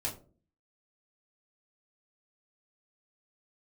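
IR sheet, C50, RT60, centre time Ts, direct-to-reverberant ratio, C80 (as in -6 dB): 10.5 dB, 0.40 s, 20 ms, -5.0 dB, 15.5 dB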